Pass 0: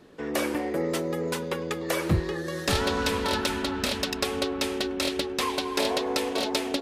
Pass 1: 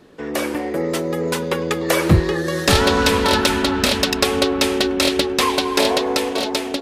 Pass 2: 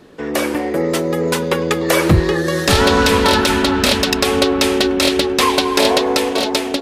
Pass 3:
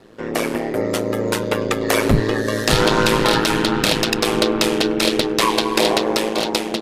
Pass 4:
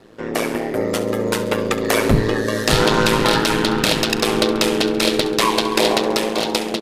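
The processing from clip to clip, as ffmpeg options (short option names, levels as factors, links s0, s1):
-af "dynaudnorm=f=530:g=5:m=2,volume=1.68"
-af "alimiter=level_in=1.78:limit=0.891:release=50:level=0:latency=1,volume=0.891"
-af "aeval=exprs='val(0)*sin(2*PI*55*n/s)':c=same"
-af "aecho=1:1:68|136|204|272|340:0.2|0.106|0.056|0.0297|0.0157"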